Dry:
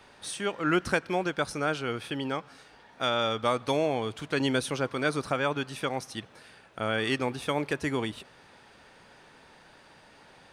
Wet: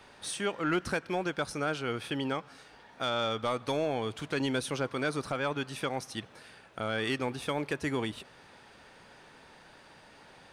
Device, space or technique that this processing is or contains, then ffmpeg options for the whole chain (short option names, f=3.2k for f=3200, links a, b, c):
soft clipper into limiter: -af "asoftclip=type=tanh:threshold=-17dB,alimiter=limit=-21.5dB:level=0:latency=1:release=415"